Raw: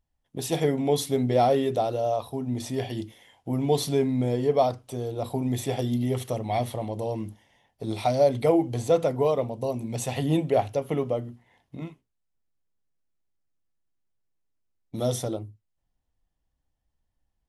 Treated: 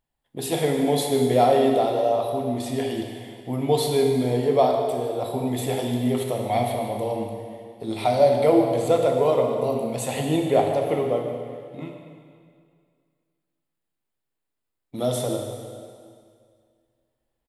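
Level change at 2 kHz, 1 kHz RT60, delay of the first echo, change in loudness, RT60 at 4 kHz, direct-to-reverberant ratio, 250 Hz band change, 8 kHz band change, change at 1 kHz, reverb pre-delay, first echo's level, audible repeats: +5.0 dB, 2.1 s, 0.152 s, +3.5 dB, 2.0 s, 2.0 dB, +2.5 dB, +2.5 dB, +4.5 dB, 6 ms, -14.0 dB, 1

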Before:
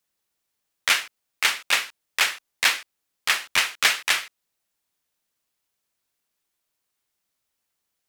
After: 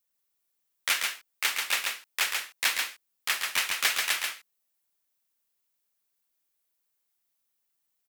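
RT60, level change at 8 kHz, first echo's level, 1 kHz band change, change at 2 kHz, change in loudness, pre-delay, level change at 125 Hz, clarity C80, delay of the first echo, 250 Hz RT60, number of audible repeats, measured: none, -3.0 dB, -4.0 dB, -6.0 dB, -6.0 dB, -5.0 dB, none, n/a, none, 0.137 s, none, 1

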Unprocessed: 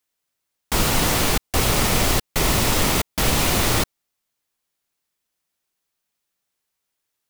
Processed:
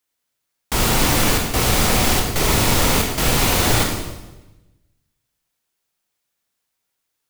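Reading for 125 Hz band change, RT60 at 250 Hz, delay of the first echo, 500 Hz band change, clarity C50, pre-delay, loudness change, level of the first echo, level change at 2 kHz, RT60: +3.0 dB, 1.3 s, none, +2.5 dB, 3.5 dB, 24 ms, +2.5 dB, none, +2.5 dB, 1.1 s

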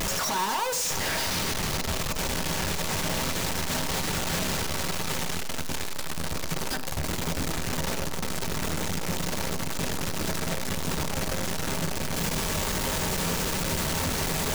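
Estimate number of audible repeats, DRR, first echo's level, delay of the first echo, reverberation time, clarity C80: none, 7.5 dB, none, none, 0.60 s, 16.5 dB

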